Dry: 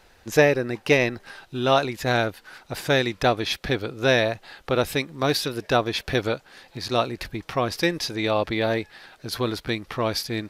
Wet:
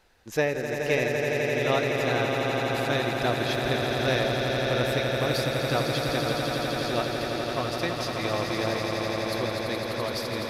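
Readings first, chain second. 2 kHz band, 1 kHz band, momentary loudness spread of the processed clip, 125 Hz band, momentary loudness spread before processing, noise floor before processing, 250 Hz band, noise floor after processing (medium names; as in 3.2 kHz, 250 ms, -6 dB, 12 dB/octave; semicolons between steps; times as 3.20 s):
-2.0 dB, -2.5 dB, 4 LU, -0.5 dB, 13 LU, -56 dBFS, -2.5 dB, -33 dBFS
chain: echo with a slow build-up 84 ms, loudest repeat 8, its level -7 dB; trim -8 dB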